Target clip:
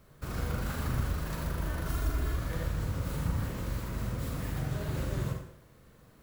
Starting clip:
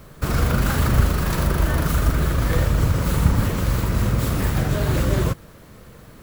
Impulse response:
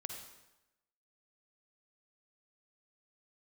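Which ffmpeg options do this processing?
-filter_complex "[0:a]asettb=1/sr,asplit=3[s0][s1][s2];[s0]atrim=end=1.864[s3];[s1]atrim=start=1.86:end=2.36,asetpts=PTS-STARTPTS,afade=t=in:d=0.004:c=qsin,afade=t=out:st=0.496:d=0.004:c=qsin,aecho=1:1:2.9:0.65,atrim=end_sample=22050[s4];[s2]atrim=start=2.356[s5];[s3][s4]acrossfade=d=0.004:c1=hsin:c2=qsin[s6];[s6][s5]acrossfade=d=0.004:c1=qsin:c2=hsin[s7];[1:a]atrim=start_sample=2205,asetrate=61740,aresample=44100[s8];[s7][s8]afir=irnorm=-1:irlink=0,volume=0.355"

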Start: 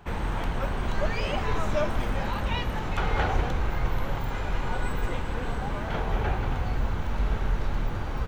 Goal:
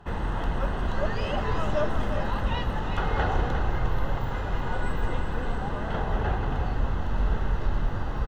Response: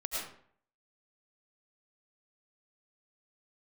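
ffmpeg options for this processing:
-af "asuperstop=centerf=2300:order=4:qfactor=6.3,aemphasis=mode=reproduction:type=cd,aecho=1:1:354:0.376"

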